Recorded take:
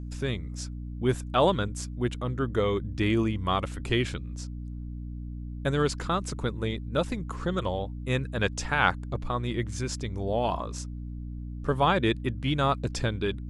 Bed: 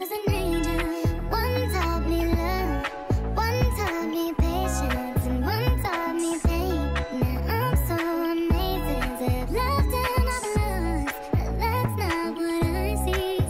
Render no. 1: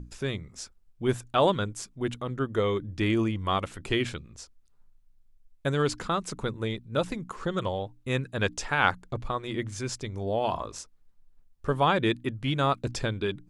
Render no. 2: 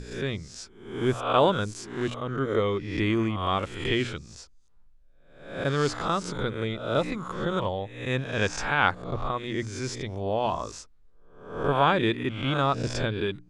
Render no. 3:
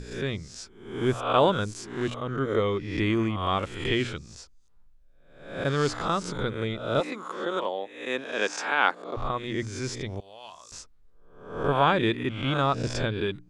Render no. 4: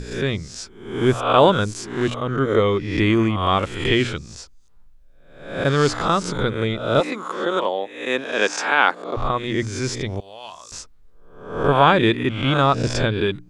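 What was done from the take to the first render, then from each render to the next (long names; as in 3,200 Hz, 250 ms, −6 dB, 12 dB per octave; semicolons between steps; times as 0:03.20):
mains-hum notches 60/120/180/240/300 Hz
peak hold with a rise ahead of every peak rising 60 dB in 0.64 s; high-frequency loss of the air 57 metres
0:07.00–0:09.17: high-pass filter 270 Hz 24 dB per octave; 0:10.20–0:10.72: first-order pre-emphasis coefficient 0.97
level +7.5 dB; brickwall limiter −2 dBFS, peak gain reduction 3 dB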